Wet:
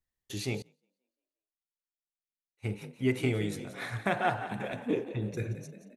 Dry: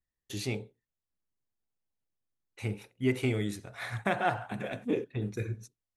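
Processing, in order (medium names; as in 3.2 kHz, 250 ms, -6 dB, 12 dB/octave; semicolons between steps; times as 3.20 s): frequency-shifting echo 176 ms, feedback 50%, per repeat +42 Hz, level -12.5 dB; 0.62–2.68 s: upward expansion 2.5:1, over -50 dBFS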